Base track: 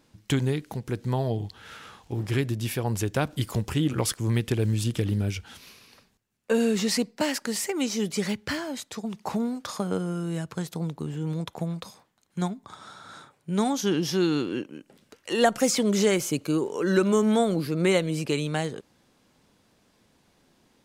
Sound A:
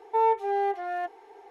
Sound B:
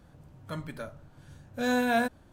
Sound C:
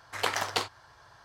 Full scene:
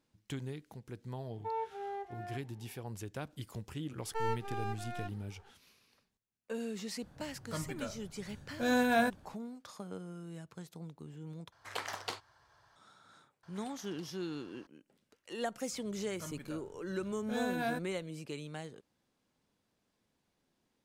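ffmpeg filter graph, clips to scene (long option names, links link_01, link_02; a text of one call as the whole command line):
ffmpeg -i bed.wav -i cue0.wav -i cue1.wav -i cue2.wav -filter_complex "[1:a]asplit=2[link_01][link_02];[2:a]asplit=2[link_03][link_04];[3:a]asplit=2[link_05][link_06];[0:a]volume=-16dB[link_07];[link_02]aeval=exprs='max(val(0),0)':channel_layout=same[link_08];[link_06]acompressor=threshold=-48dB:ratio=6:attack=3.2:release=140:knee=1:detection=peak[link_09];[link_07]asplit=2[link_10][link_11];[link_10]atrim=end=11.524[link_12];[link_05]atrim=end=1.24,asetpts=PTS-STARTPTS,volume=-10.5dB[link_13];[link_11]atrim=start=12.756[link_14];[link_01]atrim=end=1.5,asetpts=PTS-STARTPTS,volume=-14.5dB,afade=type=in:duration=0.004:curve=hsin,afade=type=out:start_time=1.496:duration=0.004:curve=hsin,adelay=1310[link_15];[link_08]atrim=end=1.5,asetpts=PTS-STARTPTS,volume=-8.5dB,afade=type=in:duration=0.004:curve=hsin,afade=type=out:start_time=1.496:duration=0.004:curve=hsin,adelay=176841S[link_16];[link_03]atrim=end=2.32,asetpts=PTS-STARTPTS,volume=-2.5dB,afade=type=in:duration=0.004:curve=hsin,afade=type=out:start_time=2.316:duration=0.004:curve=hsin,adelay=7020[link_17];[link_09]atrim=end=1.24,asetpts=PTS-STARTPTS,volume=-7.5dB,afade=type=in:duration=0.004:curve=hsin,afade=type=out:start_time=1.236:duration=0.004:curve=hsin,adelay=13430[link_18];[link_04]atrim=end=2.32,asetpts=PTS-STARTPTS,volume=-9.5dB,afade=type=in:duration=0.004:curve=hsin,afade=type=out:start_time=2.316:duration=0.004:curve=hsin,adelay=15710[link_19];[link_12][link_13]acrossfade=duration=0.004:curve1=hsin:curve2=hsin[link_20];[link_20][link_14]acrossfade=duration=0.004:curve1=hsin:curve2=hsin[link_21];[link_21][link_15][link_16][link_17][link_18][link_19]amix=inputs=6:normalize=0" out.wav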